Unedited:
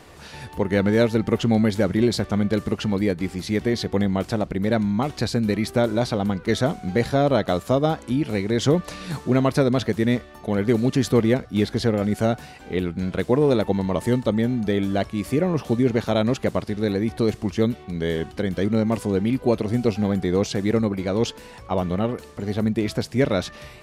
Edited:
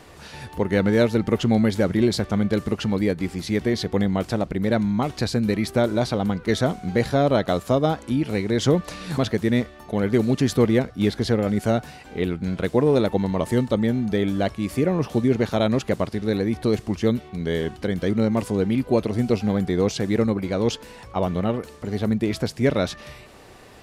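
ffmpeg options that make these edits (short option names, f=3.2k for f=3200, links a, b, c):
-filter_complex "[0:a]asplit=2[a][b];[a]atrim=end=9.182[c];[b]atrim=start=9.728[d];[c][d]acrossfade=d=0.004:c1=hsin:c2=hsin"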